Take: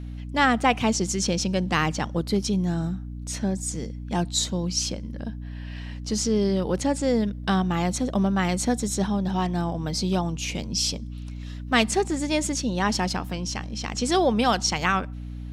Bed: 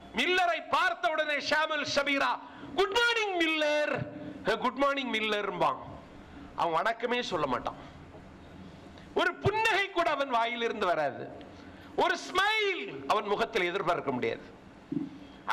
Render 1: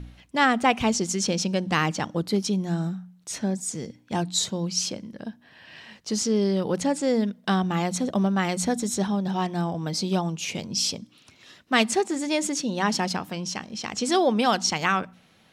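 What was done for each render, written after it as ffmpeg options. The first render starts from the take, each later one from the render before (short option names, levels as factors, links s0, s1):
-af "bandreject=f=60:t=h:w=4,bandreject=f=120:t=h:w=4,bandreject=f=180:t=h:w=4,bandreject=f=240:t=h:w=4,bandreject=f=300:t=h:w=4"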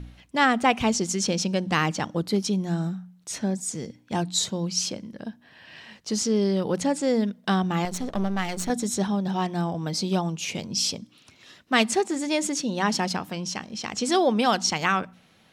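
-filter_complex "[0:a]asettb=1/sr,asplit=3[s0][s1][s2];[s0]atrim=end=7.854[s3];[s1]atrim=start=7.85:end=8.7,asetpts=PTS-STARTPTS,afade=t=in:d=0.004:c=qsin,afade=t=out:st=0.846:d=0.004:c=qsin,aeval=exprs='if(lt(val(0),0),0.251*val(0),val(0))':c=same[s4];[s2]atrim=start=8.696[s5];[s3][s4]acrossfade=d=0.004:c1=hsin:c2=qsin[s6];[s6][s5]acrossfade=d=0.004:c1=qsin:c2=hsin"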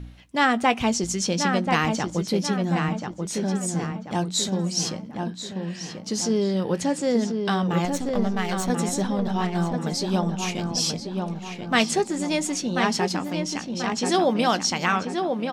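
-filter_complex "[0:a]asplit=2[s0][s1];[s1]adelay=17,volume=0.224[s2];[s0][s2]amix=inputs=2:normalize=0,asplit=2[s3][s4];[s4]adelay=1036,lowpass=f=2500:p=1,volume=0.596,asplit=2[s5][s6];[s6]adelay=1036,lowpass=f=2500:p=1,volume=0.46,asplit=2[s7][s8];[s8]adelay=1036,lowpass=f=2500:p=1,volume=0.46,asplit=2[s9][s10];[s10]adelay=1036,lowpass=f=2500:p=1,volume=0.46,asplit=2[s11][s12];[s12]adelay=1036,lowpass=f=2500:p=1,volume=0.46,asplit=2[s13][s14];[s14]adelay=1036,lowpass=f=2500:p=1,volume=0.46[s15];[s3][s5][s7][s9][s11][s13][s15]amix=inputs=7:normalize=0"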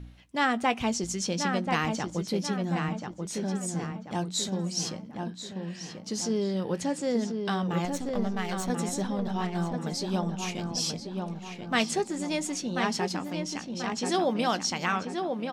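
-af "volume=0.531"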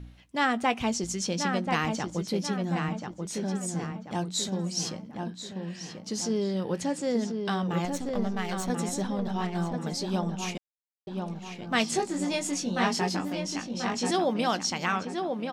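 -filter_complex "[0:a]asettb=1/sr,asplit=3[s0][s1][s2];[s0]atrim=end=11.914[s3];[s1]atrim=start=11.91:end=14.11,asetpts=PTS-STARTPTS,afade=t=in:d=0.004:c=qsin,afade=t=out:st=2.196:d=0.004:c=qsin,asplit=2[s4][s5];[s5]adelay=21,volume=0.708[s6];[s4][s6]amix=inputs=2:normalize=0,atrim=end_sample=97020[s7];[s2]atrim=start=14.106[s8];[s3][s7]acrossfade=d=0.004:c1=hsin:c2=qsin[s9];[s9][s8]acrossfade=d=0.004:c1=qsin:c2=hsin,asplit=3[s10][s11][s12];[s10]atrim=end=10.58,asetpts=PTS-STARTPTS,afade=t=out:st=10.576:d=0.004:c=hsin[s13];[s11]atrim=start=10.58:end=11.07,asetpts=PTS-STARTPTS,volume=0[s14];[s12]atrim=start=11.07,asetpts=PTS-STARTPTS,afade=t=in:d=0.004:c=hsin[s15];[s13][s14][s15]concat=n=3:v=0:a=1"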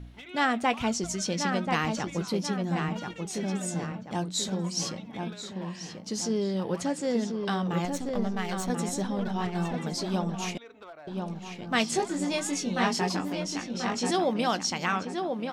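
-filter_complex "[1:a]volume=0.119[s0];[0:a][s0]amix=inputs=2:normalize=0"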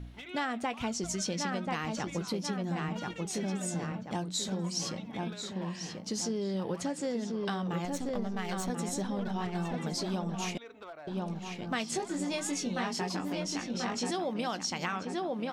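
-af "acompressor=threshold=0.0316:ratio=6"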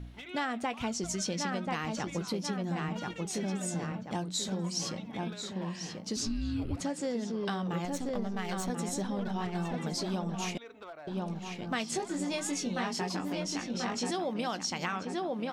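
-filter_complex "[0:a]asettb=1/sr,asplit=3[s0][s1][s2];[s0]atrim=end=6.164[s3];[s1]atrim=start=6.16:end=6.81,asetpts=PTS-STARTPTS,afade=t=in:d=0.004:c=qsin,afade=t=out:st=0.646:d=0.004:c=qsin,afreqshift=-460[s4];[s2]atrim=start=6.806[s5];[s3][s4]acrossfade=d=0.004:c1=hsin:c2=qsin[s6];[s6][s5]acrossfade=d=0.004:c1=qsin:c2=hsin"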